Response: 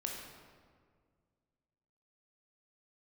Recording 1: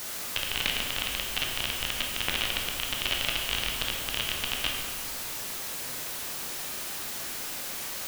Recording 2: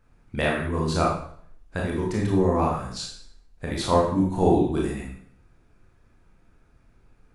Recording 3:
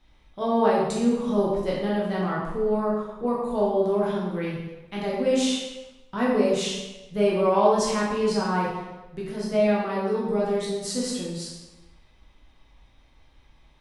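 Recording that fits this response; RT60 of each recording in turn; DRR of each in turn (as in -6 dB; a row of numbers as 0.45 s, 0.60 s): 1; 1.9 s, 0.60 s, 1.1 s; -0.5 dB, -3.5 dB, -6.0 dB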